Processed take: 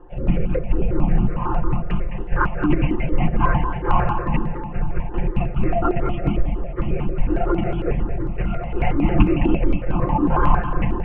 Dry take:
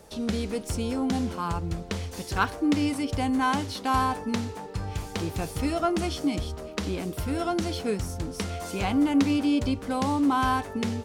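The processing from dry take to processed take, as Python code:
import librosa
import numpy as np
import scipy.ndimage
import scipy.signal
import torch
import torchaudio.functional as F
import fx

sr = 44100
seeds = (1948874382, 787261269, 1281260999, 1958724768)

y = fx.lpc_vocoder(x, sr, seeds[0], excitation='whisper', order=16)
y = scipy.signal.sosfilt(scipy.signal.cheby1(6, 1.0, 2800.0, 'lowpass', fs=sr, output='sos'), y)
y = fx.low_shelf(y, sr, hz=260.0, db=10.5)
y = y + 0.94 * np.pad(y, (int(5.7 * sr / 1000.0), 0))[:len(y)]
y = fx.echo_feedback(y, sr, ms=212, feedback_pct=36, wet_db=-8.5)
y = fx.phaser_held(y, sr, hz=11.0, low_hz=610.0, high_hz=1900.0)
y = y * 10.0 ** (2.5 / 20.0)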